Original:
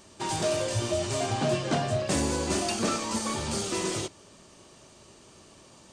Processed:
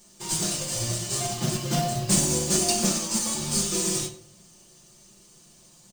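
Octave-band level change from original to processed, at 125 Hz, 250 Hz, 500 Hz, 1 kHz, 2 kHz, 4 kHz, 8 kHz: +2.5, +1.5, −3.5, −2.0, −2.0, +4.5, +9.5 decibels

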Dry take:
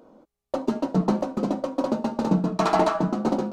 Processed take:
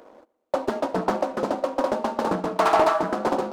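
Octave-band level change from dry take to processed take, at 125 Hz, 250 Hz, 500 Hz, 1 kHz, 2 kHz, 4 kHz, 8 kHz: −9.5, −5.5, +3.0, +4.0, +5.5, +1.5, +1.0 decibels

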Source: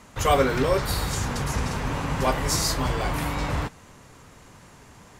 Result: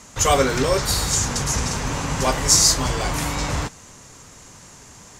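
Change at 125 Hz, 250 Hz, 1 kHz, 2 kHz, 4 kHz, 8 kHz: +2.0, +2.0, +2.5, +3.0, +8.5, +13.0 decibels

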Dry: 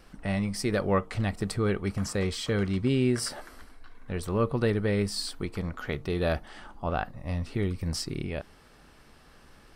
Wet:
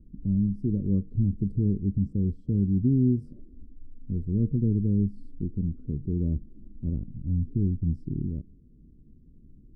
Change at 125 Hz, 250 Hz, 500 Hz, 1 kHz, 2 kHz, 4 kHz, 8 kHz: +5.0 dB, +4.0 dB, −10.5 dB, below −40 dB, below −40 dB, below −40 dB, below −40 dB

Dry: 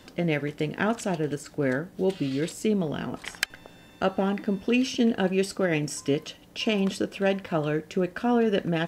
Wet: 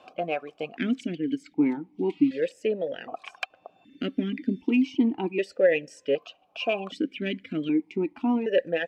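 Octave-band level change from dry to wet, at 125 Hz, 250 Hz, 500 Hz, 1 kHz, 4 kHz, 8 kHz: −9.0 dB, +0.5 dB, −0.5 dB, −4.0 dB, −4.5 dB, below −15 dB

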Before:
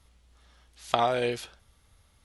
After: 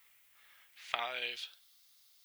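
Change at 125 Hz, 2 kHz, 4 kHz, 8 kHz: below −30 dB, −2.5 dB, −3.0 dB, −11.0 dB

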